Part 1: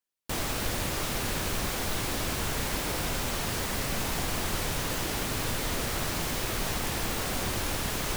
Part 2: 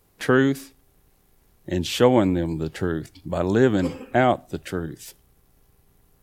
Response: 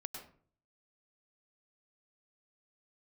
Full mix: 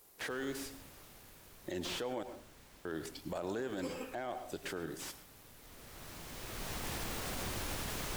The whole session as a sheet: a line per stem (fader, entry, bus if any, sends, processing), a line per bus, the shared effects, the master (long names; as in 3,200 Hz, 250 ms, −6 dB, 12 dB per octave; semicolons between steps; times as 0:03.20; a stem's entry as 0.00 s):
0:05.56 −18.5 dB → 0:06.13 −8 dB, 0.00 s, no send, automatic ducking −10 dB, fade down 1.35 s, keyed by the second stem
−4.0 dB, 0.00 s, muted 0:02.23–0:02.85, send −4 dB, bass and treble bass −13 dB, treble +6 dB; downward compressor, threshold −30 dBFS, peak gain reduction 16.5 dB; slew-rate limiting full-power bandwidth 49 Hz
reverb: on, RT60 0.50 s, pre-delay 94 ms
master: brickwall limiter −29.5 dBFS, peak gain reduction 10.5 dB